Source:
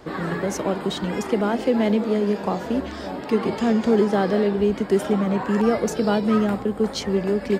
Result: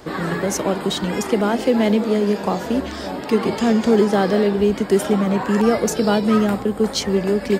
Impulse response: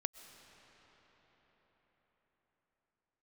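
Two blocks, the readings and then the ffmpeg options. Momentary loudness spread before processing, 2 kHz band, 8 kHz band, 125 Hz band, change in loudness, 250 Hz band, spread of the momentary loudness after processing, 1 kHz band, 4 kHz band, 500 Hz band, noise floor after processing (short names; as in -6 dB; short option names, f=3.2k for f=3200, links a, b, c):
6 LU, +4.0 dB, +8.5 dB, +3.0 dB, +3.0 dB, +3.0 dB, 6 LU, +3.5 dB, +6.0 dB, +3.0 dB, -30 dBFS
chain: -af "highshelf=f=4.5k:g=7.5,volume=3dB"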